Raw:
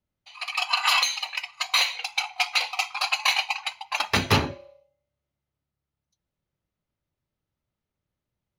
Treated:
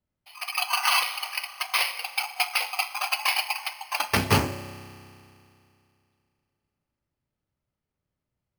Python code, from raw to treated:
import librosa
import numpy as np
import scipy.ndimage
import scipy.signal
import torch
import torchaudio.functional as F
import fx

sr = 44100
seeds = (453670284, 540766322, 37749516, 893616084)

y = fx.rev_spring(x, sr, rt60_s=2.6, pass_ms=(31,), chirp_ms=60, drr_db=12.5)
y = np.repeat(scipy.signal.resample_poly(y, 1, 6), 6)[:len(y)]
y = fx.transformer_sat(y, sr, knee_hz=2100.0, at=(2.9, 3.97))